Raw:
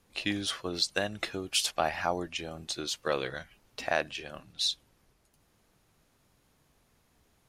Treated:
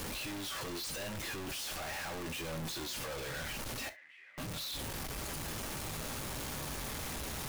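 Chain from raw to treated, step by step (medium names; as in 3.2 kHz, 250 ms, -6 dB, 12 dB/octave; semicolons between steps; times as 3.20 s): one-bit comparator; 3.89–4.38 s: band-pass filter 2 kHz, Q 13; gated-style reverb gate 90 ms falling, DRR 8.5 dB; trim -5 dB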